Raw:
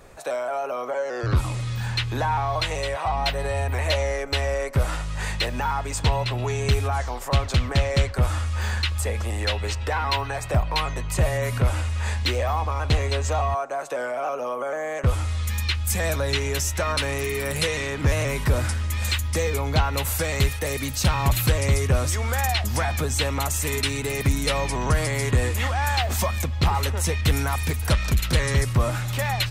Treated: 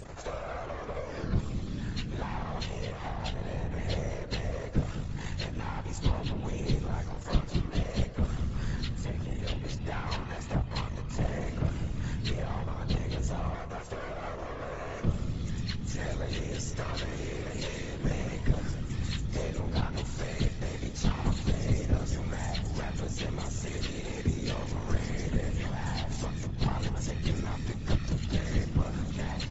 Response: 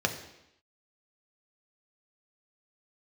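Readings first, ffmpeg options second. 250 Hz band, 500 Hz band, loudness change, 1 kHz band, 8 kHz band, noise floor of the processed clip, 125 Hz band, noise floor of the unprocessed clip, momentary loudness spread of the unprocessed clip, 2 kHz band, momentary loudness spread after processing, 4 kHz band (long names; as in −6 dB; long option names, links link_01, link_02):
−2.5 dB, −11.5 dB, −9.5 dB, −13.5 dB, −15.0 dB, −39 dBFS, −8.5 dB, −30 dBFS, 5 LU, −14.0 dB, 5 LU, −12.5 dB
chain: -filter_complex "[0:a]lowshelf=frequency=300:gain=6.5,bandreject=frequency=2400:width=11,aeval=exprs='max(val(0),0)':channel_layout=same,adynamicequalizer=threshold=0.01:dfrequency=1100:dqfactor=0.72:tfrequency=1100:tqfactor=0.72:attack=5:release=100:ratio=0.375:range=2.5:mode=cutabove:tftype=bell,afftfilt=real='hypot(re,im)*cos(2*PI*random(0))':imag='hypot(re,im)*sin(2*PI*random(1))':win_size=512:overlap=0.75,acompressor=mode=upward:threshold=-28dB:ratio=2.5,asplit=2[link_01][link_02];[link_02]adelay=202,lowpass=frequency=1000:poles=1,volume=-10dB,asplit=2[link_03][link_04];[link_04]adelay=202,lowpass=frequency=1000:poles=1,volume=0.36,asplit=2[link_05][link_06];[link_06]adelay=202,lowpass=frequency=1000:poles=1,volume=0.36,asplit=2[link_07][link_08];[link_08]adelay=202,lowpass=frequency=1000:poles=1,volume=0.36[link_09];[link_01][link_03][link_05][link_07][link_09]amix=inputs=5:normalize=0,volume=-3.5dB" -ar 24000 -c:a aac -b:a 24k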